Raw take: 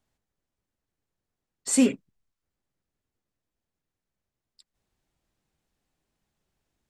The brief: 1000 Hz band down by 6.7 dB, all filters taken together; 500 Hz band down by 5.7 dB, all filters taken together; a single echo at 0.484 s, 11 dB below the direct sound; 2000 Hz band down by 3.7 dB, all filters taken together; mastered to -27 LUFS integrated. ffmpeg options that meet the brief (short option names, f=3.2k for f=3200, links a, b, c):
-af "equalizer=f=500:t=o:g=-5.5,equalizer=f=1k:t=o:g=-6,equalizer=f=2k:t=o:g=-4,aecho=1:1:484:0.282,volume=1dB"